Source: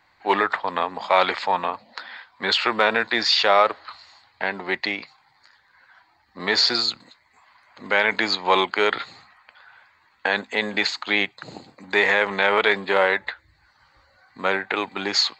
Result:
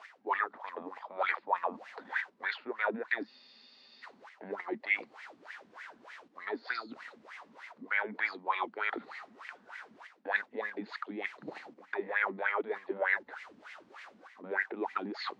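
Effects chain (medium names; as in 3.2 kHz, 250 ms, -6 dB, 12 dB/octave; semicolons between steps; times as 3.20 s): added noise white -46 dBFS; reverse; compression 4:1, threshold -33 dBFS, peak gain reduction 17.5 dB; reverse; low-pass 5.7 kHz 12 dB/octave; bass shelf 160 Hz -9.5 dB; in parallel at +2.5 dB: level held to a coarse grid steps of 14 dB; on the sum: wah-wah 3.3 Hz 210–2100 Hz, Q 6.2; spectral freeze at 3.29 s, 0.75 s; trim +8.5 dB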